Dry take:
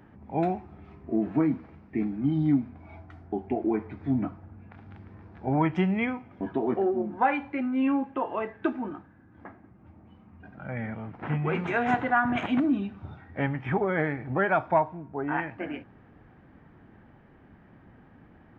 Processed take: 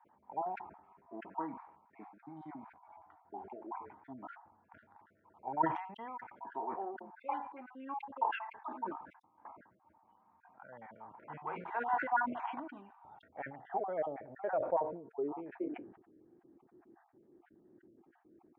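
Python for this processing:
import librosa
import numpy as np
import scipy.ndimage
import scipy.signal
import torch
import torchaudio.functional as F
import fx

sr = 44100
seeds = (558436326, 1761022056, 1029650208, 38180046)

y = fx.spec_dropout(x, sr, seeds[0], share_pct=31)
y = fx.filter_sweep_bandpass(y, sr, from_hz=940.0, to_hz=350.0, start_s=12.91, end_s=15.86, q=6.2)
y = fx.sustainer(y, sr, db_per_s=82.0)
y = y * librosa.db_to_amplitude(2.0)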